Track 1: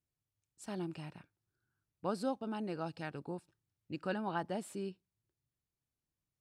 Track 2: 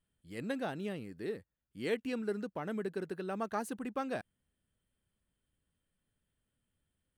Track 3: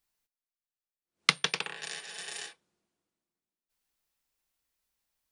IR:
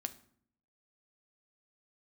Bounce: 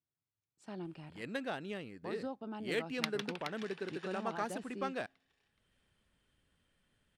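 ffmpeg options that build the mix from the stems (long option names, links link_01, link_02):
-filter_complex "[0:a]highpass=110,alimiter=level_in=4dB:limit=-24dB:level=0:latency=1:release=126,volume=-4dB,highshelf=frequency=5200:gain=7,volume=-3.5dB[link_01];[1:a]crystalizer=i=5.5:c=0,bass=frequency=250:gain=-3,treble=frequency=4000:gain=-5,acompressor=mode=upward:threshold=-53dB:ratio=2.5,adelay=850,volume=-3.5dB,asplit=2[link_02][link_03];[link_03]volume=-20.5dB[link_04];[2:a]adelay=1750,volume=-12.5dB,asplit=2[link_05][link_06];[link_06]volume=-8dB[link_07];[3:a]atrim=start_sample=2205[link_08];[link_04][link_08]afir=irnorm=-1:irlink=0[link_09];[link_07]aecho=0:1:423|846|1269|1692|2115|2538:1|0.43|0.185|0.0795|0.0342|0.0147[link_10];[link_01][link_02][link_05][link_09][link_10]amix=inputs=5:normalize=0,adynamicsmooth=sensitivity=4.5:basefreq=3700"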